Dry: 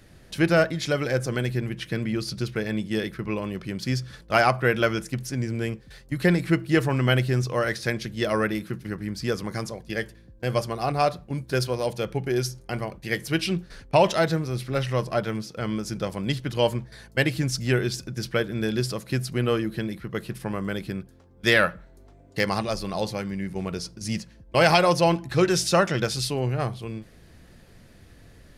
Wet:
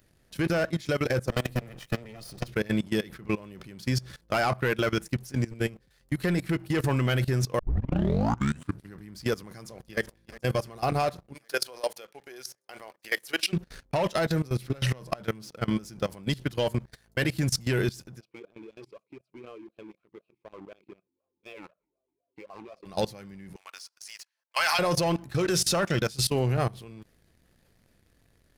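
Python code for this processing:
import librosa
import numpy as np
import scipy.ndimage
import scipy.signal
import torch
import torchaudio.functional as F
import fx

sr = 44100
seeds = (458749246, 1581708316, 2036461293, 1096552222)

y = fx.lower_of_two(x, sr, delay_ms=1.6, at=(1.29, 2.48))
y = fx.echo_throw(y, sr, start_s=9.53, length_s=0.47, ms=370, feedback_pct=75, wet_db=-16.5)
y = fx.highpass(y, sr, hz=550.0, slope=12, at=(11.33, 13.52), fade=0.02)
y = fx.over_compress(y, sr, threshold_db=-28.0, ratio=-0.5, at=(14.7, 15.23))
y = fx.vowel_sweep(y, sr, vowels='a-u', hz=4.0, at=(18.19, 22.85), fade=0.02)
y = fx.highpass(y, sr, hz=960.0, slope=24, at=(23.56, 24.79))
y = fx.edit(y, sr, fx.tape_start(start_s=7.59, length_s=1.34), tone=tone)
y = fx.high_shelf(y, sr, hz=12000.0, db=10.5)
y = fx.leveller(y, sr, passes=2)
y = fx.level_steps(y, sr, step_db=20)
y = y * librosa.db_to_amplitude(-4.5)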